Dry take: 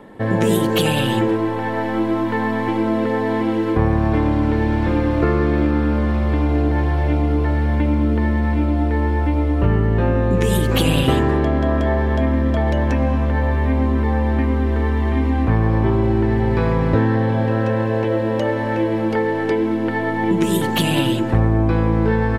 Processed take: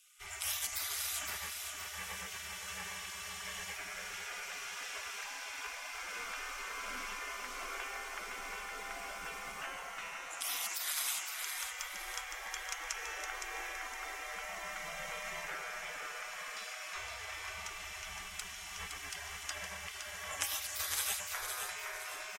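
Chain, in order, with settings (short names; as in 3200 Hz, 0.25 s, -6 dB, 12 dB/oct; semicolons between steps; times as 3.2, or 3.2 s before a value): bell 900 Hz +2.5 dB 0.77 oct; frequency shift +21 Hz; resonant high shelf 5000 Hz +7 dB, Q 3; spectral gate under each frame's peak -30 dB weak; feedback echo 0.514 s, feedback 38%, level -6 dB; gain -1.5 dB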